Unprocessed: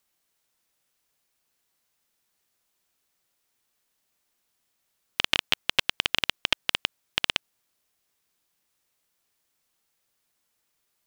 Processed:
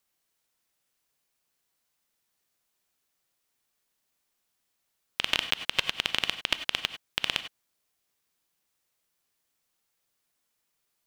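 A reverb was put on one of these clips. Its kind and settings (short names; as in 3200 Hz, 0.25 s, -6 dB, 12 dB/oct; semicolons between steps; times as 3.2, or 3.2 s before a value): non-linear reverb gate 0.12 s rising, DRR 10 dB; gain -3 dB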